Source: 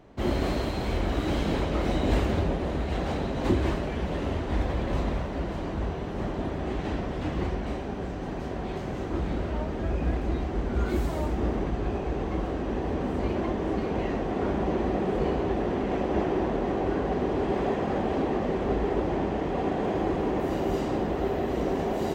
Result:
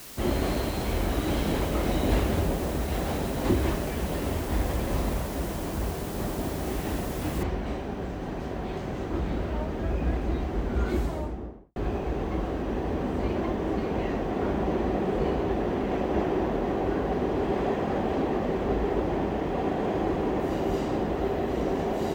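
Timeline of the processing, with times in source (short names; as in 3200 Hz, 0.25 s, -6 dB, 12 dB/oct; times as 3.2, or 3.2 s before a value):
7.43 noise floor step -44 dB -69 dB
10.91–11.76 studio fade out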